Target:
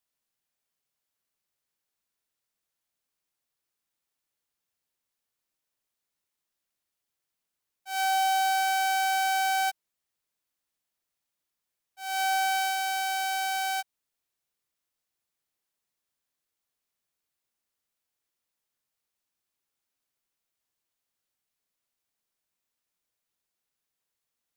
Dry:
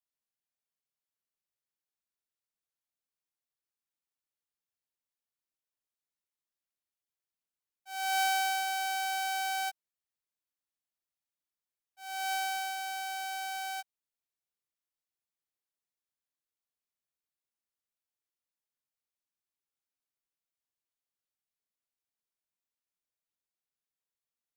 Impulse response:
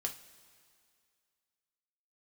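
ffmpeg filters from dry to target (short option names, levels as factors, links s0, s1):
-af "asoftclip=type=hard:threshold=0.0282,volume=2.51"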